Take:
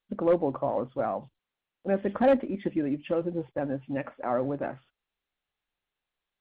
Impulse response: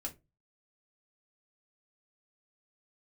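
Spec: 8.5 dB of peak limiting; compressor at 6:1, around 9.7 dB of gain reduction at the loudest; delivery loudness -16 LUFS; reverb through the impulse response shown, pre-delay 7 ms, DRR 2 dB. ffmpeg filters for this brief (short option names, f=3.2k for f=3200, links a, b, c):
-filter_complex "[0:a]acompressor=threshold=-28dB:ratio=6,alimiter=level_in=3.5dB:limit=-24dB:level=0:latency=1,volume=-3.5dB,asplit=2[a][b];[1:a]atrim=start_sample=2205,adelay=7[c];[b][c]afir=irnorm=-1:irlink=0,volume=-0.5dB[d];[a][d]amix=inputs=2:normalize=0,volume=18dB"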